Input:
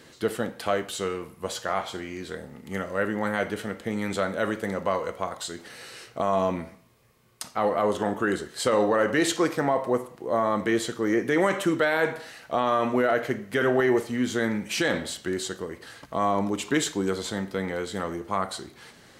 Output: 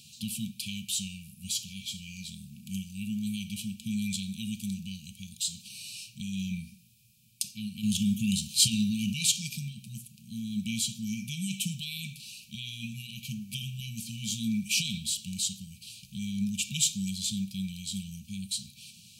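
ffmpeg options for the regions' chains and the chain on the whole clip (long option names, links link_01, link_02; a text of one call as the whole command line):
ffmpeg -i in.wav -filter_complex "[0:a]asettb=1/sr,asplit=3[link_01][link_02][link_03];[link_01]atrim=end=7.834[link_04];[link_02]atrim=start=7.83:end=9.13,asetpts=PTS-STARTPTS,afade=type=in:duration=0.004:curve=qsin,afade=type=out:start_time=1.296:duration=0.004:curve=qsin,acontrast=80,bandreject=frequency=8000:width=16[link_05];[link_03]atrim=start=9.126[link_06];[link_04][link_05]acrossfade=duration=0.004:curve1=hsin:curve2=qsin[link_07];[link_07][link_06]acrossfade=duration=0.004:curve1=qsin:curve2=hsin,highpass=78,afftfilt=real='re*(1-between(b*sr/4096,230,2300))':imag='im*(1-between(b*sr/4096,230,2300))':win_size=4096:overlap=0.75,highshelf=frequency=4800:gain=7" out.wav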